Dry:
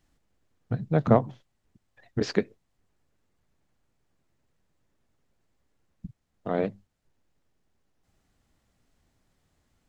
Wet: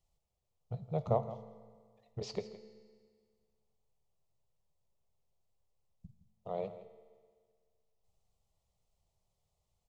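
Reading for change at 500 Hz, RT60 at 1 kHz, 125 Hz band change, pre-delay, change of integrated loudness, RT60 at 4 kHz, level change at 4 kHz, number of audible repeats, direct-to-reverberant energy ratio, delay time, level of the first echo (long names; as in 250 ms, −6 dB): −9.5 dB, 1.8 s, −11.0 dB, 4 ms, −12.0 dB, 1.7 s, −9.5 dB, 1, 9.5 dB, 165 ms, −15.0 dB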